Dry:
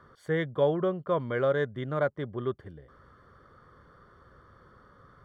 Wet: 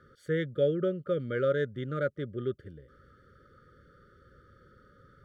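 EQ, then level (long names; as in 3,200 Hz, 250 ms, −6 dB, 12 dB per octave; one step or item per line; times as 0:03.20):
linear-phase brick-wall band-stop 600–1,200 Hz
parametric band 2,000 Hz −3 dB 0.66 octaves
−1.0 dB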